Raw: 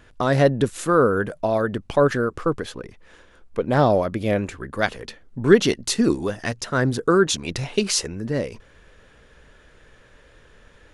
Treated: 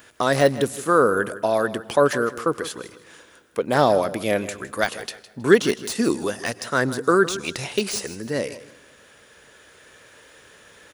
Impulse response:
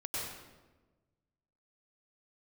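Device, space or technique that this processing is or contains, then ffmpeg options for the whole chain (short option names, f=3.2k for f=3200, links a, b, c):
ducked reverb: -filter_complex "[0:a]aemphasis=mode=production:type=bsi,asplit=3[a][b][c];[1:a]atrim=start_sample=2205[d];[b][d]afir=irnorm=-1:irlink=0[e];[c]apad=whole_len=482162[f];[e][f]sidechaincompress=threshold=-37dB:ratio=8:attack=9.6:release=1110,volume=-7.5dB[g];[a][g]amix=inputs=2:normalize=0,highpass=65,deesser=0.55,aecho=1:1:159|318|477:0.168|0.0453|0.0122,volume=1.5dB"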